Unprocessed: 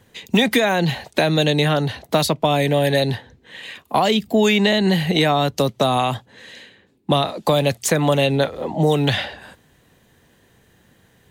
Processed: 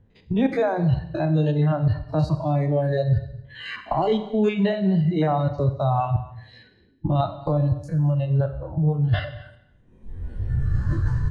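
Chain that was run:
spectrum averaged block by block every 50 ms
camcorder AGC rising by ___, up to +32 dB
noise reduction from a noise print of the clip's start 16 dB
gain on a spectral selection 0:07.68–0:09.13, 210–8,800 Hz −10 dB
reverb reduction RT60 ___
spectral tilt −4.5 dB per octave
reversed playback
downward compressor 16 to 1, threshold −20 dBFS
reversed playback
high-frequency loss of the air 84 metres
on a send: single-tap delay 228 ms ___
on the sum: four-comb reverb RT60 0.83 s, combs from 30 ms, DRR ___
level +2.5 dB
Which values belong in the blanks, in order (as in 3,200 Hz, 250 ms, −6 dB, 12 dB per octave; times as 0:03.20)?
18 dB per second, 1.4 s, −21 dB, 9.5 dB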